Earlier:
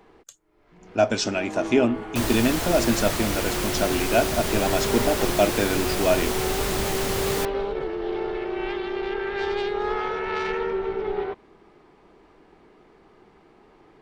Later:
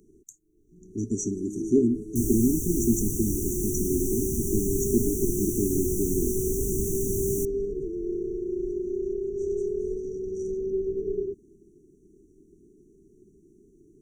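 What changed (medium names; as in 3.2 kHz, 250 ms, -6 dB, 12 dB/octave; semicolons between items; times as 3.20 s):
first sound: add treble shelf 5.3 kHz +6.5 dB; master: add brick-wall FIR band-stop 430–5700 Hz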